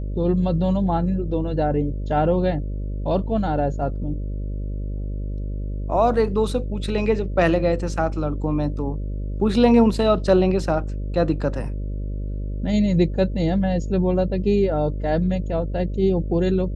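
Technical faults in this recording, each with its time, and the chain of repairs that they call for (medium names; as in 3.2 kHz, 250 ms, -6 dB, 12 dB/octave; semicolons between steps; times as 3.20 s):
buzz 50 Hz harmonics 12 -27 dBFS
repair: de-hum 50 Hz, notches 12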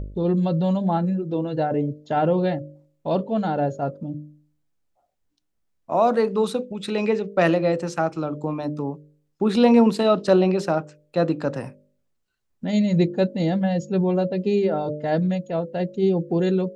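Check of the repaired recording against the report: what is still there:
nothing left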